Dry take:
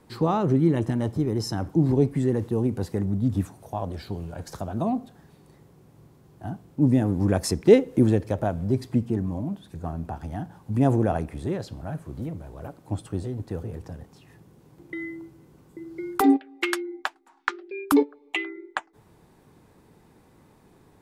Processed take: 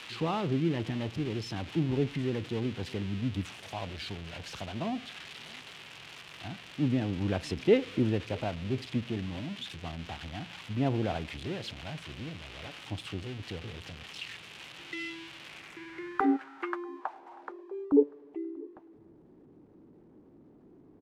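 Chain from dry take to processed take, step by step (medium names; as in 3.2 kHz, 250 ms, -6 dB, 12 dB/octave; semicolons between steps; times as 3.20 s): zero-crossing glitches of -17.5 dBFS; low-pass sweep 2.9 kHz -> 310 Hz, 15.41–18.51 s; echo from a far wall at 110 m, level -25 dB; trim -8.5 dB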